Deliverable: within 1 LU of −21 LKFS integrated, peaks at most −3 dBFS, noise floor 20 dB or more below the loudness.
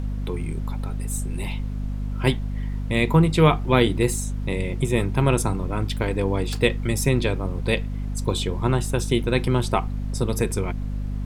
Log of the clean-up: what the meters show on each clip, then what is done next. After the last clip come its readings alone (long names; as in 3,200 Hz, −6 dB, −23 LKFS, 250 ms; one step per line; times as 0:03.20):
mains hum 50 Hz; hum harmonics up to 250 Hz; level of the hum −25 dBFS; background noise floor −29 dBFS; target noise floor −44 dBFS; integrated loudness −24.0 LKFS; sample peak −2.5 dBFS; target loudness −21.0 LKFS
→ hum removal 50 Hz, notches 5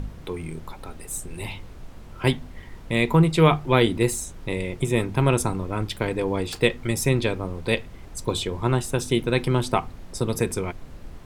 mains hum none found; background noise floor −42 dBFS; target noise floor −44 dBFS
→ noise reduction from a noise print 6 dB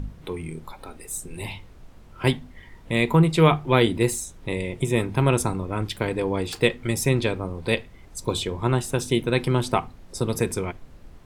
background noise floor −47 dBFS; integrated loudness −24.0 LKFS; sample peak −2.5 dBFS; target loudness −21.0 LKFS
→ level +3 dB
brickwall limiter −3 dBFS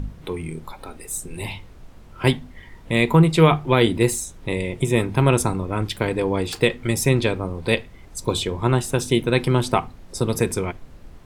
integrated loudness −21.5 LKFS; sample peak −3.0 dBFS; background noise floor −44 dBFS